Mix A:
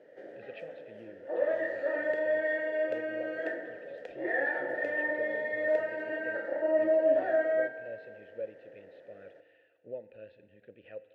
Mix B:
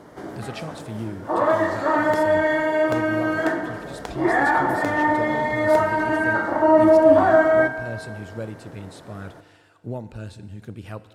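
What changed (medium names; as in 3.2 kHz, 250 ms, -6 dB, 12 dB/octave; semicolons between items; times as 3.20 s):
speech: remove low-pass 3.6 kHz 24 dB/octave; master: remove vowel filter e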